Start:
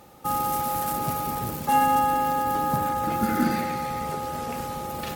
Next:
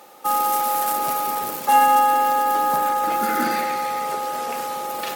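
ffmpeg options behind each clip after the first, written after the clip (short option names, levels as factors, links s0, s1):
-af "highpass=440,volume=2"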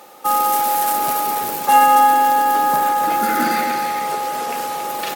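-af "aecho=1:1:277:0.376,volume=1.5"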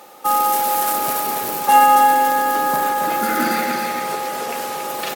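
-af "aecho=1:1:282:0.355"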